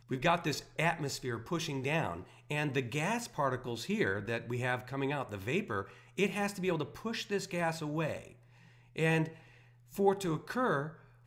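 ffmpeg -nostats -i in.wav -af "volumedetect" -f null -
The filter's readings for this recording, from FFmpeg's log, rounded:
mean_volume: -34.8 dB
max_volume: -15.0 dB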